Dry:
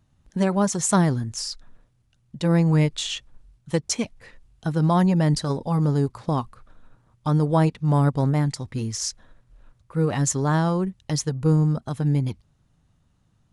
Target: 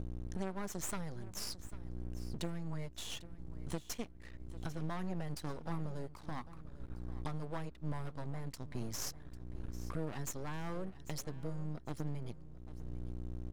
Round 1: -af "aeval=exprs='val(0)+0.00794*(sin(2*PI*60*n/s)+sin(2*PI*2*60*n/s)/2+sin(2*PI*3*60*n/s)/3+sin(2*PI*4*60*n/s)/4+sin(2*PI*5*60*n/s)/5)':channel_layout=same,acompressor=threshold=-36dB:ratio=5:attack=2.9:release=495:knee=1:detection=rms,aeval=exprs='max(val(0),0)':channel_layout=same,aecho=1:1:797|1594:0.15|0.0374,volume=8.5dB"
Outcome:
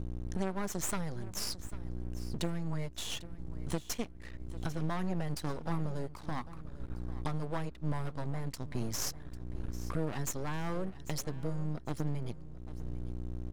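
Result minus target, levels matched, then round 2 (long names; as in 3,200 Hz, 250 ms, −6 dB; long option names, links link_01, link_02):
downward compressor: peak gain reduction −5 dB
-af "aeval=exprs='val(0)+0.00794*(sin(2*PI*60*n/s)+sin(2*PI*2*60*n/s)/2+sin(2*PI*3*60*n/s)/3+sin(2*PI*4*60*n/s)/4+sin(2*PI*5*60*n/s)/5)':channel_layout=same,acompressor=threshold=-42.5dB:ratio=5:attack=2.9:release=495:knee=1:detection=rms,aeval=exprs='max(val(0),0)':channel_layout=same,aecho=1:1:797|1594:0.15|0.0374,volume=8.5dB"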